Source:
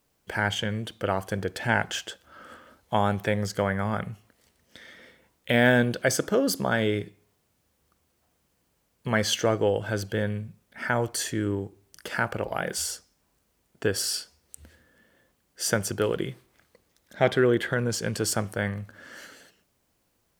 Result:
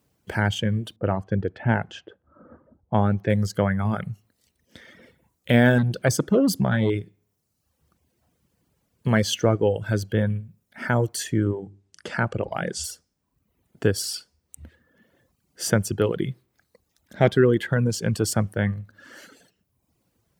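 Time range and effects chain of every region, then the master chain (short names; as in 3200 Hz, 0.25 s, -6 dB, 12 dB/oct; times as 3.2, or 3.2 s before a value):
0.96–3.3 low-pass opened by the level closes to 780 Hz, open at -22 dBFS + LPF 1400 Hz 6 dB/oct
5.78–6.9 bell 150 Hz +4 dB 1.6 oct + core saturation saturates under 680 Hz
11.51–12.84 LPF 8500 Hz 24 dB/oct + notches 50/100/150/200/250/300 Hz
whole clip: reverb removal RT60 0.92 s; HPF 74 Hz; low shelf 300 Hz +11.5 dB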